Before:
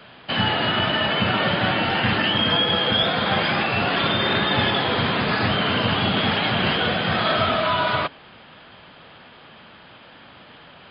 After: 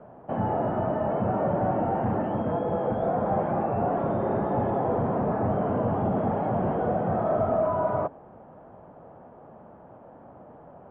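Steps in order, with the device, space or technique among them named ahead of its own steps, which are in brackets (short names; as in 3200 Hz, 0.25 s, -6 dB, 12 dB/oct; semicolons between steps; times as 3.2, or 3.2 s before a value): overdriven synthesiser ladder filter (soft clip -18.5 dBFS, distortion -14 dB; ladder low-pass 900 Hz, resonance 35%); gain +7 dB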